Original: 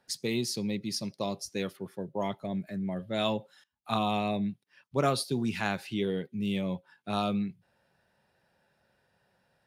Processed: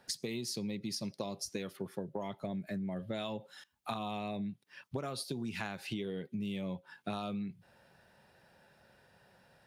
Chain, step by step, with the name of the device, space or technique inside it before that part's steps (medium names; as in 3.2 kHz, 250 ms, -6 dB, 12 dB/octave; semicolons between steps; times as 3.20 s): serial compression, leveller first (compression 2.5:1, threshold -32 dBFS, peak gain reduction 8 dB; compression 6:1, threshold -43 dBFS, peak gain reduction 14.5 dB); trim +7 dB